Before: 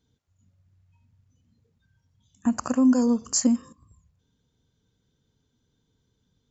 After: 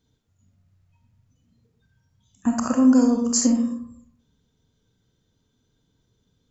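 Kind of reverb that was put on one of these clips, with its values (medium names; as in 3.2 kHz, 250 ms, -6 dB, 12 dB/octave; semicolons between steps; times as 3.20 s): algorithmic reverb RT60 0.68 s, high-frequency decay 0.4×, pre-delay 5 ms, DRR 2.5 dB; trim +1.5 dB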